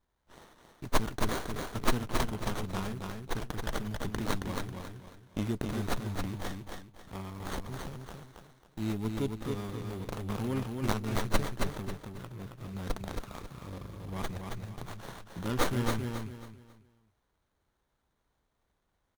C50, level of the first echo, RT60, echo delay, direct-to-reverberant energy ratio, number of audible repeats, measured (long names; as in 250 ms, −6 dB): no reverb audible, −4.5 dB, no reverb audible, 272 ms, no reverb audible, 3